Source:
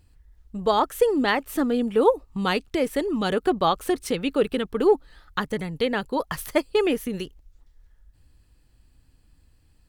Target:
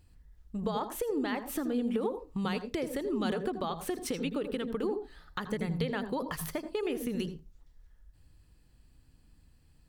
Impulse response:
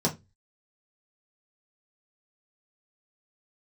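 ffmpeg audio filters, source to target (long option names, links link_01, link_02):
-filter_complex "[0:a]alimiter=limit=-16dB:level=0:latency=1:release=197,acompressor=threshold=-27dB:ratio=6,asplit=2[link_01][link_02];[1:a]atrim=start_sample=2205,adelay=79[link_03];[link_02][link_03]afir=irnorm=-1:irlink=0,volume=-21dB[link_04];[link_01][link_04]amix=inputs=2:normalize=0,volume=-3dB"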